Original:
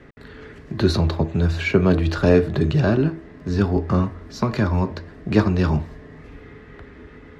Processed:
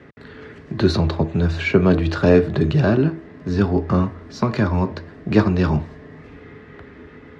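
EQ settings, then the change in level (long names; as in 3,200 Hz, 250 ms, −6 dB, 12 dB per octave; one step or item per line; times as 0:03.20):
high-pass filter 82 Hz
high-frequency loss of the air 53 metres
+2.0 dB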